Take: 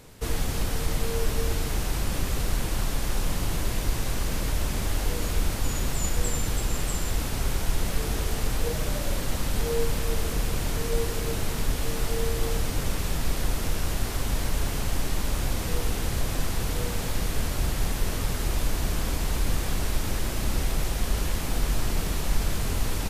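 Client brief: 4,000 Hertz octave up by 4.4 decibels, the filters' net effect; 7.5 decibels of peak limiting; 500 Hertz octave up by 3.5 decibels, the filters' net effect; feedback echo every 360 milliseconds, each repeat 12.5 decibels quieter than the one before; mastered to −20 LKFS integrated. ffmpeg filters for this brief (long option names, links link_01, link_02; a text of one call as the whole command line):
ffmpeg -i in.wav -af "equalizer=frequency=500:width_type=o:gain=4,equalizer=frequency=4000:width_type=o:gain=5.5,alimiter=limit=-18dB:level=0:latency=1,aecho=1:1:360|720|1080:0.237|0.0569|0.0137,volume=9.5dB" out.wav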